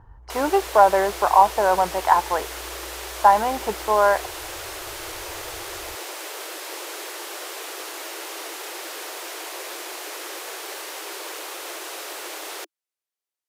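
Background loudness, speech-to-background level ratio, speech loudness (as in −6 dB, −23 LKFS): −33.0 LKFS, 13.5 dB, −19.5 LKFS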